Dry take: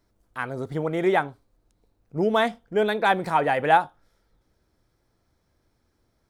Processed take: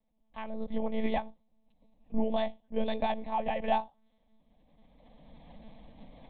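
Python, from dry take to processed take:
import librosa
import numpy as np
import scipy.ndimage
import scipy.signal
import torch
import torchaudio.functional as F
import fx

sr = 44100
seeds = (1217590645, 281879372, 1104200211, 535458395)

y = fx.recorder_agc(x, sr, target_db=-9.5, rise_db_per_s=18.0, max_gain_db=30)
y = fx.lpc_monotone(y, sr, seeds[0], pitch_hz=220.0, order=10)
y = fx.fixed_phaser(y, sr, hz=380.0, stages=6)
y = y * 10.0 ** (-8.5 / 20.0)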